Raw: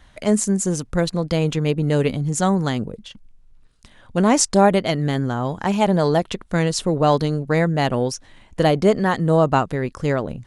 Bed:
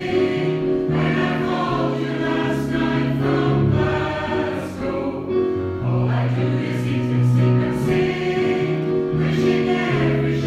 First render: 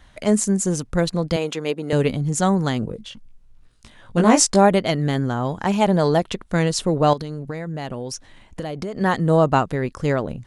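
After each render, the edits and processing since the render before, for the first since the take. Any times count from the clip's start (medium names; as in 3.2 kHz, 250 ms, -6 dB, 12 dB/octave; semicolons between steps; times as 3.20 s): 1.36–1.93 s: high-pass 340 Hz; 2.81–4.56 s: doubling 18 ms -3 dB; 7.13–9.01 s: compression 16:1, threshold -24 dBFS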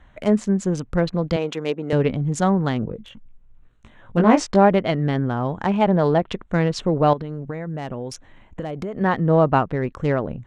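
local Wiener filter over 9 samples; low-pass that closes with the level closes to 3 kHz, closed at -15 dBFS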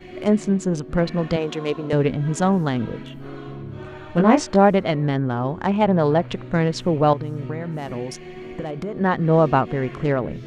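add bed -17 dB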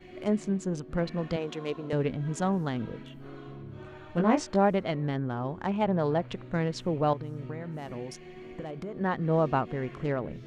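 trim -9 dB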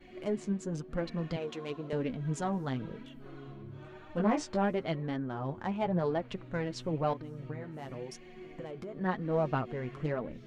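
saturation -13.5 dBFS, distortion -23 dB; flange 0.97 Hz, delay 3.2 ms, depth 6.3 ms, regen +32%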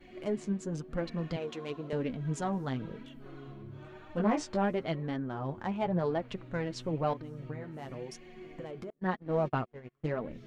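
8.90–10.15 s: gate -35 dBFS, range -35 dB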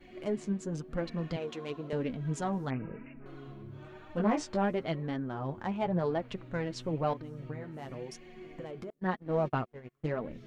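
2.70–3.26 s: careless resampling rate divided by 8×, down none, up filtered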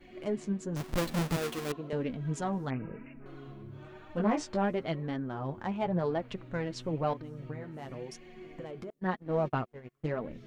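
0.76–1.72 s: square wave that keeps the level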